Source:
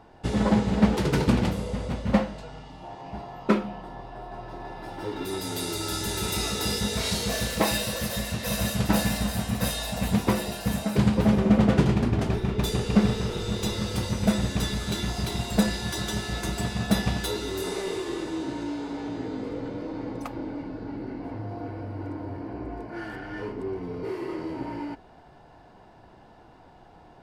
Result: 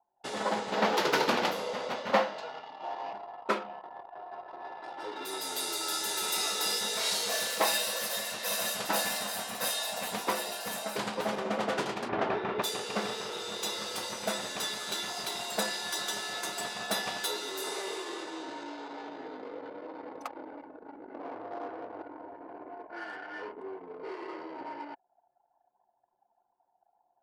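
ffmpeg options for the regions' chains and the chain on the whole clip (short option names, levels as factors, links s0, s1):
-filter_complex "[0:a]asettb=1/sr,asplit=3[s0][s1][s2];[s0]atrim=end=0.724[s3];[s1]atrim=start=0.72:end=3.13,asetpts=PTS-STARTPTS,afade=t=in:d=0.004:c=qsin,afade=t=out:st=2.406:d=0.004:c=qsin,equalizer=f=8800:t=o:w=0.52:g=-13,acontrast=58,highpass=f=140:p=1[s4];[s2]atrim=start=3.126[s5];[s3][s4]acrossfade=d=0.004:c1=hsin:c2=qsin[s6];[s6][s5]acrossfade=d=0.004:c1=qsin:c2=hsin,asettb=1/sr,asplit=3[s7][s8][s9];[s7]atrim=end=12.094[s10];[s8]atrim=start=12.09:end=12.62,asetpts=PTS-STARTPTS,afade=t=in:d=0.004:c=qsin,afade=t=out:st=0.526:d=0.004:c=qsin,lowpass=2200,acontrast=84[s11];[s9]atrim=start=12.616[s12];[s10][s11]acrossfade=d=0.004:c1=hsin:c2=qsin[s13];[s13][s12]acrossfade=d=0.004:c1=qsin:c2=hsin,asettb=1/sr,asplit=3[s14][s15][s16];[s14]atrim=end=21.144[s17];[s15]atrim=start=21.14:end=22.02,asetpts=PTS-STARTPTS,afade=t=in:d=0.004:c=qsin,afade=t=out:st=0.876:d=0.004:c=qsin,equalizer=f=430:t=o:w=2.2:g=7,aeval=exprs='clip(val(0),-1,0.0237)':c=same[s18];[s16]atrim=start=22.016[s19];[s17][s18]acrossfade=d=0.004:c1=hsin:c2=qsin[s20];[s20][s19]acrossfade=d=0.004:c1=qsin:c2=hsin,highpass=620,anlmdn=0.1,equalizer=f=2300:t=o:w=0.77:g=-2.5"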